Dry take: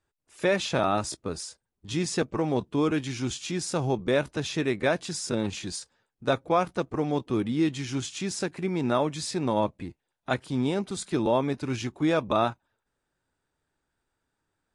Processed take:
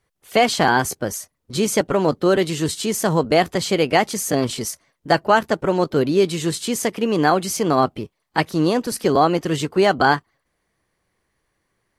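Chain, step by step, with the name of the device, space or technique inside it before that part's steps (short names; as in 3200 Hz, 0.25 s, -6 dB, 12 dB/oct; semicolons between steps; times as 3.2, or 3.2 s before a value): nightcore (varispeed +23%); gain +8.5 dB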